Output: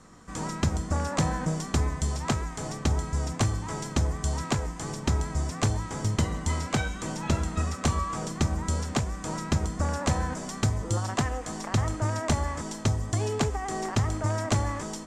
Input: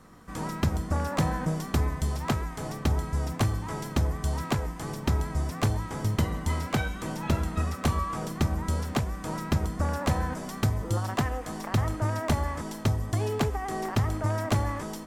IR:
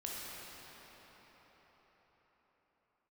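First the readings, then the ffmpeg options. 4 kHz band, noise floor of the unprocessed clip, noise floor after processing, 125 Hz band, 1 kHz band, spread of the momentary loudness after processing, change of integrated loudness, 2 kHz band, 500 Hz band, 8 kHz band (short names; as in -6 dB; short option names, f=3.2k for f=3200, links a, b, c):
+2.5 dB, -39 dBFS, -39 dBFS, 0.0 dB, 0.0 dB, 5 LU, +0.5 dB, +0.5 dB, 0.0 dB, +6.0 dB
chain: -af "lowpass=f=7.4k:t=q:w=2.5"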